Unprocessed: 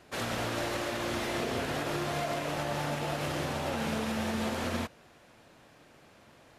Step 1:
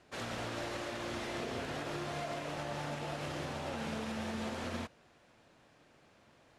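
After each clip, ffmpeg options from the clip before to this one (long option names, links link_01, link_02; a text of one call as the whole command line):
ffmpeg -i in.wav -af "lowpass=9100,volume=-6.5dB" out.wav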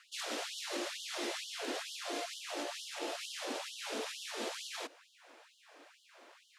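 ffmpeg -i in.wav -filter_complex "[0:a]acrossover=split=430|3000[link_01][link_02][link_03];[link_02]acompressor=threshold=-50dB:ratio=6[link_04];[link_01][link_04][link_03]amix=inputs=3:normalize=0,afftfilt=real='re*gte(b*sr/1024,240*pow(2900/240,0.5+0.5*sin(2*PI*2.2*pts/sr)))':imag='im*gte(b*sr/1024,240*pow(2900/240,0.5+0.5*sin(2*PI*2.2*pts/sr)))':win_size=1024:overlap=0.75,volume=7.5dB" out.wav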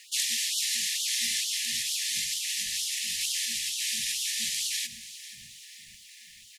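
ffmpeg -i in.wav -filter_complex "[0:a]asplit=6[link_01][link_02][link_03][link_04][link_05][link_06];[link_02]adelay=489,afreqshift=-110,volume=-15dB[link_07];[link_03]adelay=978,afreqshift=-220,volume=-20.4dB[link_08];[link_04]adelay=1467,afreqshift=-330,volume=-25.7dB[link_09];[link_05]adelay=1956,afreqshift=-440,volume=-31.1dB[link_10];[link_06]adelay=2445,afreqshift=-550,volume=-36.4dB[link_11];[link_01][link_07][link_08][link_09][link_10][link_11]amix=inputs=6:normalize=0,crystalizer=i=5.5:c=0,afftfilt=real='re*(1-between(b*sr/4096,240,1700))':imag='im*(1-between(b*sr/4096,240,1700))':win_size=4096:overlap=0.75,volume=2dB" out.wav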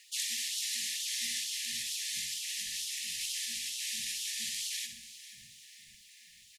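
ffmpeg -i in.wav -af "aecho=1:1:63|126|189|252:0.376|0.135|0.0487|0.0175,volume=-7dB" out.wav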